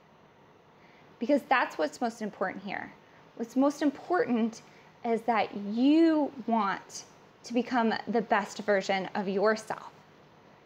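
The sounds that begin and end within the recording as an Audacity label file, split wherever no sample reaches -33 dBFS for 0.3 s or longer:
1.220000	2.850000	sound
3.400000	4.530000	sound
5.050000	6.990000	sound
7.470000	9.820000	sound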